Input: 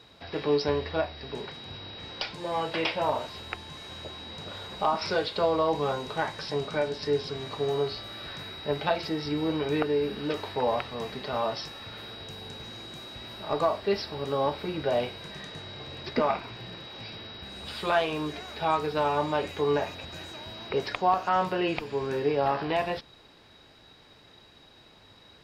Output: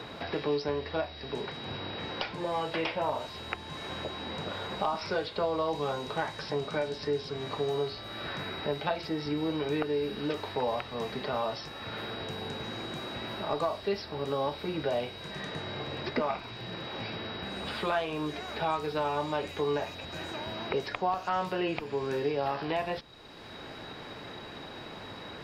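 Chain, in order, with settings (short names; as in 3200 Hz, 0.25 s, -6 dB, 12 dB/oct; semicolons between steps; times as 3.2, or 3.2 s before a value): three-band squash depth 70%; gain -3.5 dB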